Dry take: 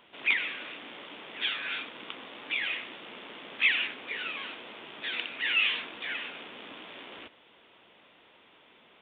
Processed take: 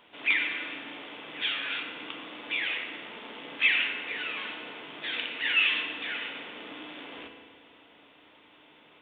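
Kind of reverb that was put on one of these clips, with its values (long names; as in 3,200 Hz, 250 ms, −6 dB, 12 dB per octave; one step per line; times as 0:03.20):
feedback delay network reverb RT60 1.8 s, low-frequency decay 1.2×, high-frequency decay 0.75×, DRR 3 dB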